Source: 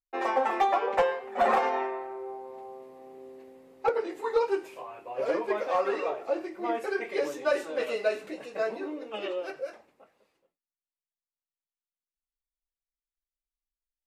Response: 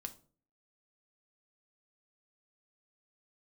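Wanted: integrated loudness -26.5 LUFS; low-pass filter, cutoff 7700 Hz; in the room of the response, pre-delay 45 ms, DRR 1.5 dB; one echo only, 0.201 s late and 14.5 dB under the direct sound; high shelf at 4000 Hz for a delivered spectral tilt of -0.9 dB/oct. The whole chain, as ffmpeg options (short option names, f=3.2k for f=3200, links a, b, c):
-filter_complex "[0:a]lowpass=7.7k,highshelf=f=4k:g=7.5,aecho=1:1:201:0.188,asplit=2[a][b];[1:a]atrim=start_sample=2205,adelay=45[c];[b][c]afir=irnorm=-1:irlink=0,volume=2dB[d];[a][d]amix=inputs=2:normalize=0,volume=0.5dB"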